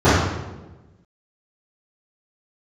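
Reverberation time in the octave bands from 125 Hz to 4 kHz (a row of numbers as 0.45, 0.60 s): 1.4, 1.4, 1.3, 1.0, 0.90, 0.75 s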